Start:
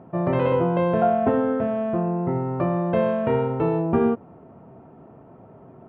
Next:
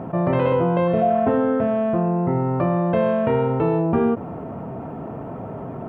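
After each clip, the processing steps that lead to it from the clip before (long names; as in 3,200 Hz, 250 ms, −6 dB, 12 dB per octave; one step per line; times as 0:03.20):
healed spectral selection 0:00.90–0:01.19, 740–1,900 Hz after
notch filter 370 Hz, Q 12
envelope flattener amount 50%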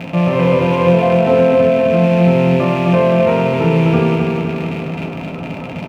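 loose part that buzzes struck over −31 dBFS, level −20 dBFS
repeating echo 258 ms, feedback 59%, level −3.5 dB
convolution reverb RT60 0.50 s, pre-delay 3 ms, DRR 1.5 dB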